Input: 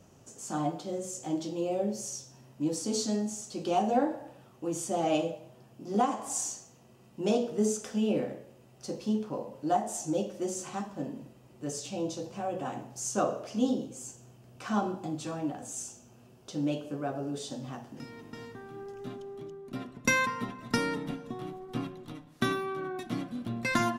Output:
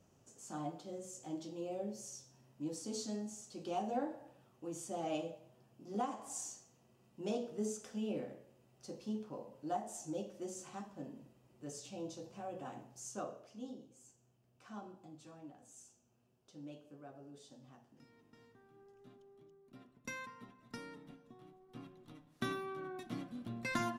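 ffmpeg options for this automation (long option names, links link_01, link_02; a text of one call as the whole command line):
ffmpeg -i in.wav -af "volume=-0.5dB,afade=type=out:start_time=12.79:duration=0.78:silence=0.375837,afade=type=in:start_time=21.65:duration=0.92:silence=0.298538" out.wav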